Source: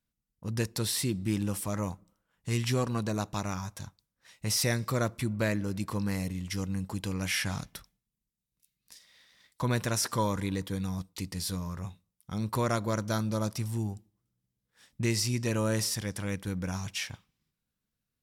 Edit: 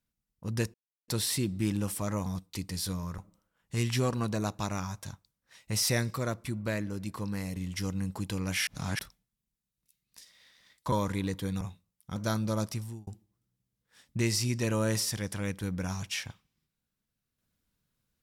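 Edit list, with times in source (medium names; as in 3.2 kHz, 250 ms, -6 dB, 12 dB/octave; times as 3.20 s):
0.74 s: insert silence 0.34 s
4.87–6.30 s: gain -3.5 dB
7.41–7.73 s: reverse
9.66–10.20 s: delete
10.89–11.81 s: move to 1.92 s
12.36–13.00 s: delete
13.52–13.91 s: fade out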